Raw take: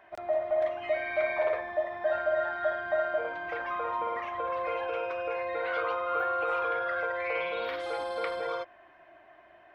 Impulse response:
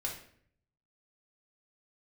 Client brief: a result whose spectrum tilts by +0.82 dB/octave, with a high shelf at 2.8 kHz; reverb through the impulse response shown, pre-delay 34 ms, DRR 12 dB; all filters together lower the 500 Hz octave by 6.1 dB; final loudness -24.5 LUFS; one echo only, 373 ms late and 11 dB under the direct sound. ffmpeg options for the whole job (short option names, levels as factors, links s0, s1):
-filter_complex "[0:a]equalizer=f=500:t=o:g=-8.5,highshelf=f=2800:g=8,aecho=1:1:373:0.282,asplit=2[s0][s1];[1:a]atrim=start_sample=2205,adelay=34[s2];[s1][s2]afir=irnorm=-1:irlink=0,volume=0.2[s3];[s0][s3]amix=inputs=2:normalize=0,volume=2.37"